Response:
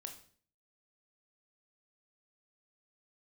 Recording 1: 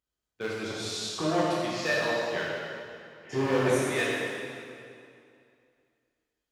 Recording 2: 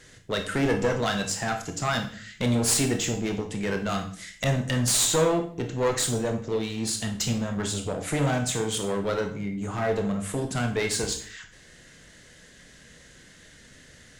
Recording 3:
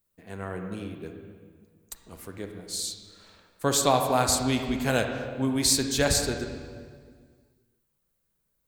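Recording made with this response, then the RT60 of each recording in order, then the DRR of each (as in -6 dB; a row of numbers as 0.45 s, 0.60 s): 2; 2.5 s, 0.50 s, 1.8 s; -6.5 dB, 4.0 dB, 4.5 dB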